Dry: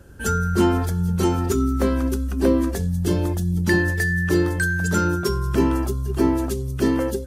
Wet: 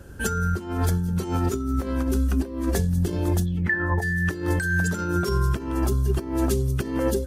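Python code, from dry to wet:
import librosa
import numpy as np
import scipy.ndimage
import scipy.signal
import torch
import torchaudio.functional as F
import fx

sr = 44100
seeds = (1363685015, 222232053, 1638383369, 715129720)

y = fx.over_compress(x, sr, threshold_db=-23.0, ratio=-0.5)
y = fx.lowpass_res(y, sr, hz=fx.line((3.45, 3700.0), (4.01, 800.0)), q=11.0, at=(3.45, 4.01), fade=0.02)
y = y + 10.0 ** (-22.0 / 20.0) * np.pad(y, (int(611 * sr / 1000.0), 0))[:len(y)]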